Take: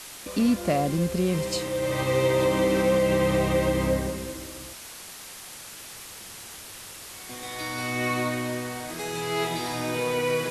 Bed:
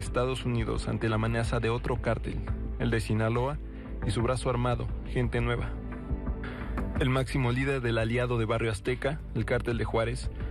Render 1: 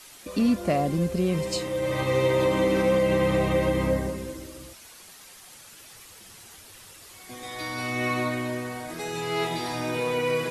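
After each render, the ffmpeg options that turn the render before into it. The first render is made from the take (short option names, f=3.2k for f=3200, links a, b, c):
-af "afftdn=nr=8:nf=-42"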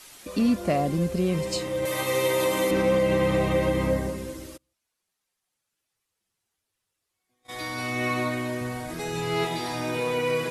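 -filter_complex "[0:a]asettb=1/sr,asplit=3[a][b][c];[a]atrim=end=1.854[d];[b]atrim=start=1.85:end=2.71,asetpts=PTS-STARTPTS,afade=t=in:d=0.004:c=qsin,afade=t=out:st=0.856:d=0.004:c=qsin,aemphasis=mode=production:type=bsi[e];[c]atrim=start=2.706[f];[d][e]acrossfade=d=0.004:c1=hsin:c2=qsin[g];[g][f]acrossfade=d=0.004:c1=qsin:c2=hsin,asplit=3[h][i][j];[h]afade=t=out:st=4.56:d=0.02[k];[i]agate=range=-34dB:threshold=-35dB:ratio=16:release=100:detection=peak,afade=t=in:st=4.56:d=0.02,afade=t=out:st=7.48:d=0.02[l];[j]afade=t=in:st=7.48:d=0.02[m];[k][l][m]amix=inputs=3:normalize=0,asettb=1/sr,asplit=3[n][o][p];[n]atrim=end=8.614[q];[o]atrim=start=8.61:end=9.45,asetpts=PTS-STARTPTS,afade=t=in:d=0.004:c=qsin,afade=t=out:st=0.836:d=0.004:c=qsin,lowshelf=f=140:g=11[r];[p]atrim=start=9.446[s];[q][r]acrossfade=d=0.004:c1=hsin:c2=qsin[t];[t][s]acrossfade=d=0.004:c1=qsin:c2=hsin"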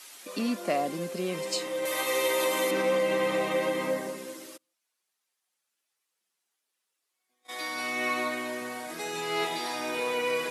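-af "highpass=f=190:w=0.5412,highpass=f=190:w=1.3066,lowshelf=f=360:g=-10.5"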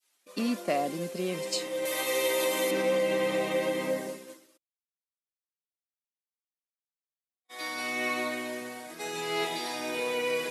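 -af "agate=range=-33dB:threshold=-33dB:ratio=3:detection=peak,adynamicequalizer=threshold=0.00447:dfrequency=1200:dqfactor=1.5:tfrequency=1200:tqfactor=1.5:attack=5:release=100:ratio=0.375:range=3:mode=cutabove:tftype=bell"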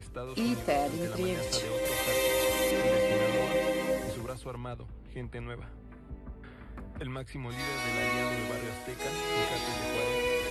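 -filter_complex "[1:a]volume=-11.5dB[a];[0:a][a]amix=inputs=2:normalize=0"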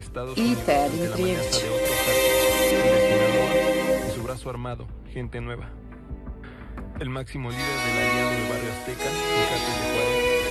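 -af "volume=7.5dB"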